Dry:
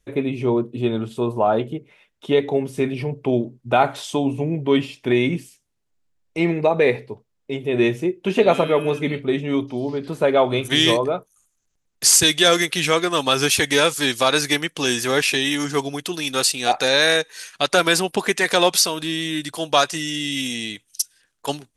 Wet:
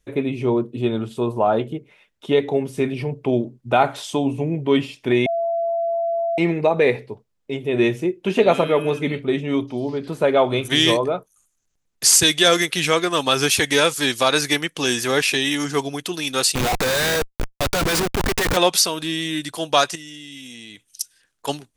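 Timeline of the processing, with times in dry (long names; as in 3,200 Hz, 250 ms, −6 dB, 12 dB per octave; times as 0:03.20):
0:05.26–0:06.38: beep over 674 Hz −19 dBFS
0:16.55–0:18.57: comparator with hysteresis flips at −25.5 dBFS
0:19.95–0:21.01: downward compressor 10 to 1, threshold −34 dBFS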